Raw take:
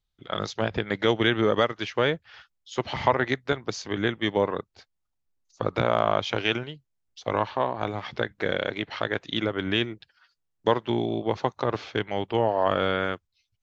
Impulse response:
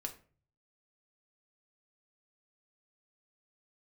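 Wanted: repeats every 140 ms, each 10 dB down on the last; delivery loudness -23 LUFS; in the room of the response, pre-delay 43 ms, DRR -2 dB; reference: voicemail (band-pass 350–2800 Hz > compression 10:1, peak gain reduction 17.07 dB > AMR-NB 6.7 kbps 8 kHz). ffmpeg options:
-filter_complex "[0:a]aecho=1:1:140|280|420|560:0.316|0.101|0.0324|0.0104,asplit=2[s0][s1];[1:a]atrim=start_sample=2205,adelay=43[s2];[s1][s2]afir=irnorm=-1:irlink=0,volume=1.5[s3];[s0][s3]amix=inputs=2:normalize=0,highpass=350,lowpass=2800,acompressor=threshold=0.0316:ratio=10,volume=5.01" -ar 8000 -c:a libopencore_amrnb -b:a 6700

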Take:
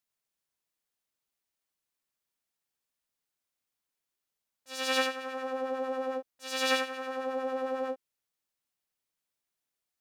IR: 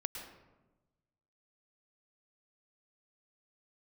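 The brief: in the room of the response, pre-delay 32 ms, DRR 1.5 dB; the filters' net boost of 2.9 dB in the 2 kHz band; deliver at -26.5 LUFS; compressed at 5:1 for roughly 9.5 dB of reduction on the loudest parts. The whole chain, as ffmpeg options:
-filter_complex "[0:a]equalizer=f=2000:t=o:g=3.5,acompressor=threshold=0.0282:ratio=5,asplit=2[s0][s1];[1:a]atrim=start_sample=2205,adelay=32[s2];[s1][s2]afir=irnorm=-1:irlink=0,volume=0.841[s3];[s0][s3]amix=inputs=2:normalize=0,volume=2.11"

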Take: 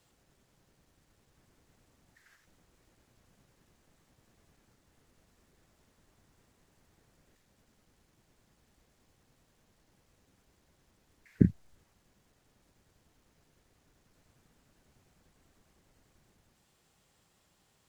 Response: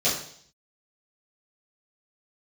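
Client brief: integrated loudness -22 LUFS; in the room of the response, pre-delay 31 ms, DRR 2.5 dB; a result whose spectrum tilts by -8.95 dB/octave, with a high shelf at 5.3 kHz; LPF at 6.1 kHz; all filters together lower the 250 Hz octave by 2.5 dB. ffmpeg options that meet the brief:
-filter_complex "[0:a]lowpass=6100,equalizer=f=250:t=o:g=-3.5,highshelf=f=5300:g=8.5,asplit=2[s0][s1];[1:a]atrim=start_sample=2205,adelay=31[s2];[s1][s2]afir=irnorm=-1:irlink=0,volume=0.168[s3];[s0][s3]amix=inputs=2:normalize=0,volume=2.37"

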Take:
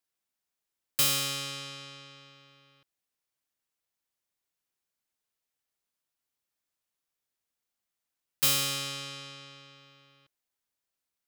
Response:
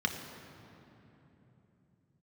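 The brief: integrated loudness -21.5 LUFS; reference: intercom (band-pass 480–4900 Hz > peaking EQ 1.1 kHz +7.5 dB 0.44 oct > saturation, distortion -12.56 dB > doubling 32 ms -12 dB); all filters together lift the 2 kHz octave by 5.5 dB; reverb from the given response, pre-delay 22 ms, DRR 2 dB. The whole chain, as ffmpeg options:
-filter_complex "[0:a]equalizer=f=2000:t=o:g=7,asplit=2[s0][s1];[1:a]atrim=start_sample=2205,adelay=22[s2];[s1][s2]afir=irnorm=-1:irlink=0,volume=0.355[s3];[s0][s3]amix=inputs=2:normalize=0,highpass=480,lowpass=4900,equalizer=f=1100:t=o:w=0.44:g=7.5,asoftclip=threshold=0.0531,asplit=2[s4][s5];[s5]adelay=32,volume=0.251[s6];[s4][s6]amix=inputs=2:normalize=0,volume=3.16"

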